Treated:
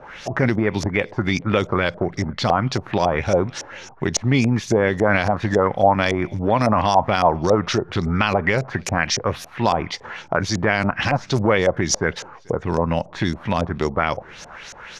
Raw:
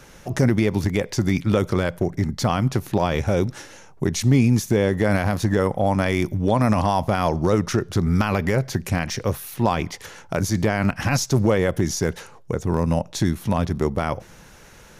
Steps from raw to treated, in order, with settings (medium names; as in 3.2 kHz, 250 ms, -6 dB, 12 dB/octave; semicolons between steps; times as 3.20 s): bass shelf 450 Hz -7 dB; echo from a far wall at 75 m, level -29 dB; LFO low-pass saw up 3.6 Hz 600–7000 Hz; tape noise reduction on one side only encoder only; trim +4 dB